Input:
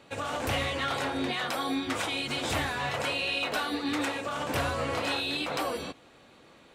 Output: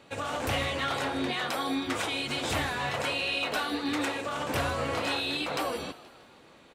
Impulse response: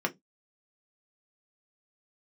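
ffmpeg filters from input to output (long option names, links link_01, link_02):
-filter_complex "[0:a]asplit=6[link_01][link_02][link_03][link_04][link_05][link_06];[link_02]adelay=159,afreqshift=82,volume=-18dB[link_07];[link_03]adelay=318,afreqshift=164,volume=-23.2dB[link_08];[link_04]adelay=477,afreqshift=246,volume=-28.4dB[link_09];[link_05]adelay=636,afreqshift=328,volume=-33.6dB[link_10];[link_06]adelay=795,afreqshift=410,volume=-38.8dB[link_11];[link_01][link_07][link_08][link_09][link_10][link_11]amix=inputs=6:normalize=0"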